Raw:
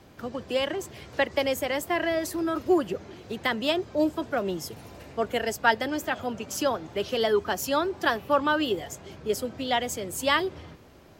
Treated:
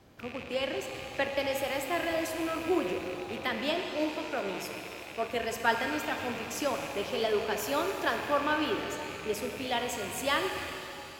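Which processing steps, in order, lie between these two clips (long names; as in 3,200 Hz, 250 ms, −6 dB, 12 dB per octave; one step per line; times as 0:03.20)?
loose part that buzzes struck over −45 dBFS, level −25 dBFS
0:03.74–0:05.30: low-shelf EQ 230 Hz −8 dB
reverb with rising layers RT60 2.9 s, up +7 semitones, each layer −8 dB, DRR 4 dB
level −6 dB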